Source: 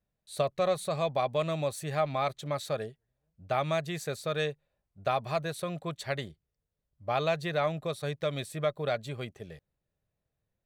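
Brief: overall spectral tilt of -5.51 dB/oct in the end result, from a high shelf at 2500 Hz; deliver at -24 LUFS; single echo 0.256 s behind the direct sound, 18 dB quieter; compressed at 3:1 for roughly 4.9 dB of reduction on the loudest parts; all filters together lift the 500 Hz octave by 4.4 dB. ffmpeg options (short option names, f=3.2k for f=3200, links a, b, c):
-af "equalizer=f=500:t=o:g=6,highshelf=f=2.5k:g=-7,acompressor=threshold=-26dB:ratio=3,aecho=1:1:256:0.126,volume=8.5dB"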